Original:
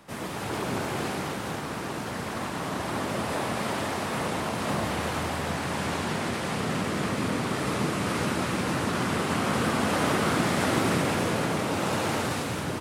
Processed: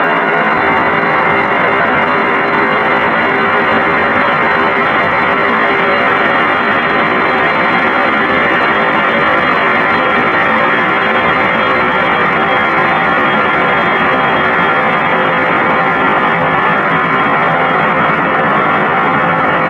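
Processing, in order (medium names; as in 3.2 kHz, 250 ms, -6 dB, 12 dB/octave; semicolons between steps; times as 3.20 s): treble shelf 7.5 kHz -8.5 dB; on a send: feedback delay 1014 ms, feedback 48%, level -12.5 dB; on the sum: saturation -13.5 dBFS, distortion -28 dB; spectral gate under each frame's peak -15 dB strong; frequency weighting ITU-R 468; simulated room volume 810 m³, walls mixed, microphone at 9.4 m; Paulstretch 32×, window 0.50 s, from 6.26 s; in parallel at -12 dB: hard clipper -14.5 dBFS, distortion -15 dB; on the sum: tempo 0.65×; three bands offset in time mids, highs, lows 40/570 ms, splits 160/4500 Hz; loudness maximiser +8.5 dB; trim -1 dB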